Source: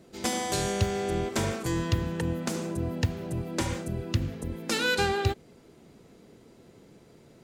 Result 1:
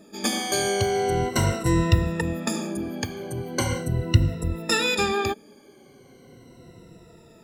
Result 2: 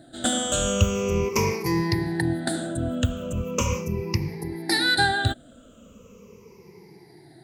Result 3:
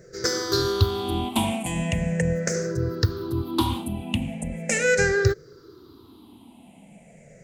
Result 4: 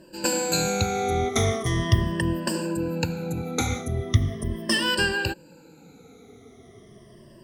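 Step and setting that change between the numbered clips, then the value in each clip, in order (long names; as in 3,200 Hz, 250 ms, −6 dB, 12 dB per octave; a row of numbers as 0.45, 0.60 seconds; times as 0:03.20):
rippled gain that drifts along the octave scale, ripples per octave: 2, 0.81, 0.55, 1.3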